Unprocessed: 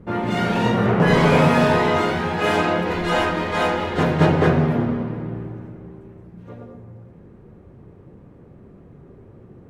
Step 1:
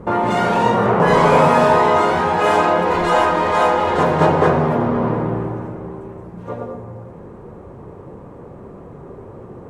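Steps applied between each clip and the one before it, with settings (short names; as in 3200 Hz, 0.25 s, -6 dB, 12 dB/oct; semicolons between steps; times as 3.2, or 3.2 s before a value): graphic EQ 500/1000/8000 Hz +6/+11/+7 dB; in parallel at -2.5 dB: negative-ratio compressor -23 dBFS, ratio -1; on the sum: gain -4 dB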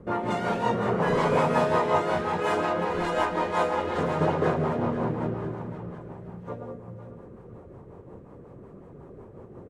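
feedback echo 0.504 s, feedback 41%, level -10.5 dB; rotary speaker horn 5.5 Hz; gain -8 dB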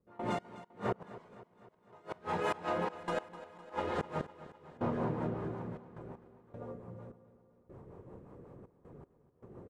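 flipped gate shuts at -15 dBFS, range -29 dB; step gate ".x..xxx...xxxxx" 78 bpm -24 dB; feedback echo 0.254 s, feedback 59%, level -16 dB; gain -6.5 dB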